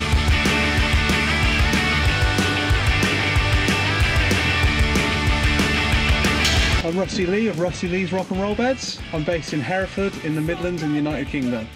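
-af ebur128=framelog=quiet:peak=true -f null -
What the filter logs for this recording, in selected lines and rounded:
Integrated loudness:
  I:         -19.6 LUFS
  Threshold: -29.6 LUFS
Loudness range:
  LRA:         5.2 LU
  Threshold: -39.5 LUFS
  LRA low:   -23.4 LUFS
  LRA high:  -18.2 LUFS
True peak:
  Peak:       -9.8 dBFS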